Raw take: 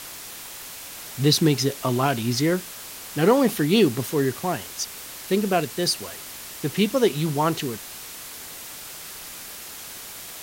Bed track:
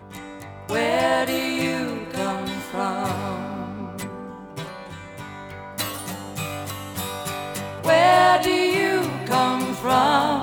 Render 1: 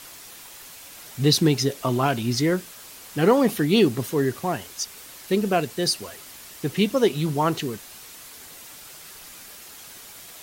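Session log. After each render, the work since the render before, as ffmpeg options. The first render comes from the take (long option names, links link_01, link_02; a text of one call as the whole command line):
ffmpeg -i in.wav -af "afftdn=noise_reduction=6:noise_floor=-39" out.wav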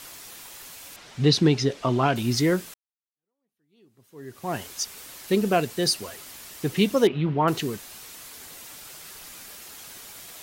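ffmpeg -i in.wav -filter_complex "[0:a]asettb=1/sr,asplit=3[link_01][link_02][link_03];[link_01]atrim=end=0.964[link_04];[link_02]atrim=start=0.96:end=2.16,asetpts=PTS-STARTPTS,afade=type=in:duration=0.004:curve=qsin,afade=type=out:start_time=1.196:duration=0.004:curve=qsin,lowpass=4900[link_05];[link_03]atrim=start=2.156[link_06];[link_04][link_05]acrossfade=duration=0.004:curve1=hsin:curve2=qsin[link_07];[link_07][link_06]acrossfade=duration=0.004:curve1=qsin:curve2=hsin,asettb=1/sr,asplit=3[link_08][link_09][link_10];[link_08]atrim=end=7.074[link_11];[link_09]atrim=start=7.07:end=7.48,asetpts=PTS-STARTPTS,afade=type=in:duration=0.004:curve=qsin,afade=type=out:start_time=0.406:duration=0.004:curve=qsin,lowpass=frequency=2900:width=0.5412,lowpass=frequency=2900:width=1.3066[link_12];[link_10]atrim=start=7.476[link_13];[link_11][link_12]acrossfade=duration=0.004:curve1=hsin:curve2=qsin[link_14];[link_14][link_13]acrossfade=duration=0.004:curve1=qsin:curve2=hsin,asplit=2[link_15][link_16];[link_15]atrim=end=2.74,asetpts=PTS-STARTPTS,afade=type=out:start_time=2.736:duration=0.004:curve=hsin[link_17];[link_16]atrim=start=2.74,asetpts=PTS-STARTPTS,afade=type=in:duration=1.83:curve=exp[link_18];[link_17][link_18]concat=n=2:v=0:a=1" out.wav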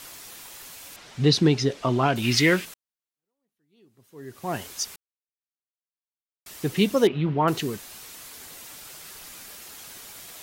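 ffmpeg -i in.wav -filter_complex "[0:a]asplit=3[link_01][link_02][link_03];[link_01]afade=type=out:start_time=2.22:duration=0.02[link_04];[link_02]equalizer=frequency=2500:width=1:gain=14.5,afade=type=in:start_time=2.22:duration=0.02,afade=type=out:start_time=2.64:duration=0.02[link_05];[link_03]afade=type=in:start_time=2.64:duration=0.02[link_06];[link_04][link_05][link_06]amix=inputs=3:normalize=0,asplit=3[link_07][link_08][link_09];[link_07]atrim=end=4.96,asetpts=PTS-STARTPTS,afade=type=out:start_time=4.956:duration=0.004:curve=hsin[link_10];[link_08]atrim=start=4.96:end=6.46,asetpts=PTS-STARTPTS,volume=0[link_11];[link_09]atrim=start=6.46,asetpts=PTS-STARTPTS,afade=type=in:duration=0.004:curve=hsin[link_12];[link_10][link_11][link_12]concat=n=3:v=0:a=1" out.wav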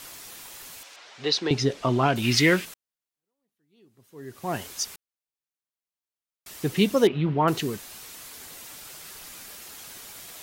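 ffmpeg -i in.wav -filter_complex "[0:a]asettb=1/sr,asplit=3[link_01][link_02][link_03];[link_01]atrim=end=0.834[link_04];[link_02]atrim=start=0.83:end=1.51,asetpts=PTS-STARTPTS,afade=type=in:duration=0.004:curve=qsin,afade=type=out:start_time=0.676:duration=0.004:curve=qsin,acrossover=split=420 7300:gain=0.0708 1 0.0891[link_05][link_06][link_07];[link_05][link_06][link_07]amix=inputs=3:normalize=0[link_08];[link_03]atrim=start=1.506[link_09];[link_04][link_08]acrossfade=duration=0.004:curve1=hsin:curve2=qsin[link_10];[link_10][link_09]acrossfade=duration=0.004:curve1=qsin:curve2=hsin" out.wav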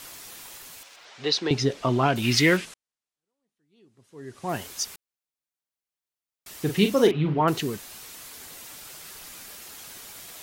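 ffmpeg -i in.wav -filter_complex "[0:a]asettb=1/sr,asplit=3[link_01][link_02][link_03];[link_01]atrim=end=0.584[link_04];[link_02]atrim=start=0.58:end=1.05,asetpts=PTS-STARTPTS,afade=type=in:duration=0.004:curve=qsin,afade=type=out:start_time=0.466:duration=0.004:curve=qsin,aeval=exprs='sgn(val(0))*max(abs(val(0))-0.00119,0)':channel_layout=same[link_05];[link_03]atrim=start=1.046[link_06];[link_04][link_05]acrossfade=duration=0.004:curve1=hsin:curve2=qsin[link_07];[link_07][link_06]acrossfade=duration=0.004:curve1=qsin:curve2=hsin,asettb=1/sr,asplit=3[link_08][link_09][link_10];[link_08]atrim=end=2.574[link_11];[link_09]atrim=start=2.57:end=4.49,asetpts=PTS-STARTPTS,afade=type=in:duration=0.004:curve=qsin,afade=type=out:start_time=1.916:duration=0.004:curve=qsin,lowpass=frequency=10000:width=0.5412,lowpass=frequency=10000:width=1.3066[link_12];[link_10]atrim=start=4.486[link_13];[link_11][link_12]acrossfade=duration=0.004:curve1=hsin:curve2=qsin[link_14];[link_14][link_13]acrossfade=duration=0.004:curve1=qsin:curve2=hsin,asettb=1/sr,asplit=3[link_15][link_16][link_17];[link_15]atrim=end=6.624[link_18];[link_16]atrim=start=6.62:end=7.41,asetpts=PTS-STARTPTS,afade=type=in:duration=0.004:curve=qsin,afade=type=out:start_time=0.786:duration=0.004:curve=qsin,asplit=2[link_19][link_20];[link_20]adelay=40,volume=-7dB[link_21];[link_19][link_21]amix=inputs=2:normalize=0,atrim=end_sample=34839[link_22];[link_17]atrim=start=7.406[link_23];[link_18][link_22]acrossfade=duration=0.004:curve1=hsin:curve2=qsin[link_24];[link_24][link_23]acrossfade=duration=0.004:curve1=qsin:curve2=hsin" out.wav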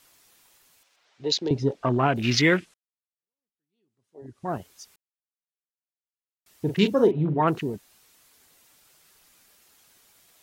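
ffmpeg -i in.wav -af "afwtdn=0.0282" out.wav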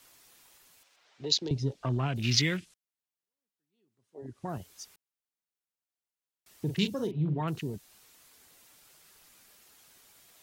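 ffmpeg -i in.wav -filter_complex "[0:a]acrossover=split=160|3000[link_01][link_02][link_03];[link_02]acompressor=threshold=-38dB:ratio=3[link_04];[link_01][link_04][link_03]amix=inputs=3:normalize=0" out.wav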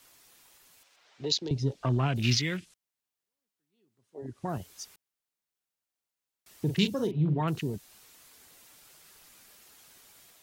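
ffmpeg -i in.wav -af "alimiter=limit=-16.5dB:level=0:latency=1:release=456,dynaudnorm=framelen=570:gausssize=3:maxgain=3dB" out.wav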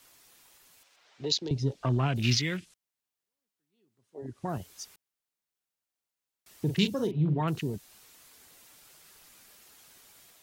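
ffmpeg -i in.wav -af anull out.wav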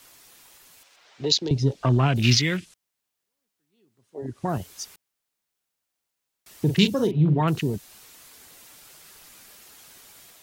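ffmpeg -i in.wav -af "volume=7dB" out.wav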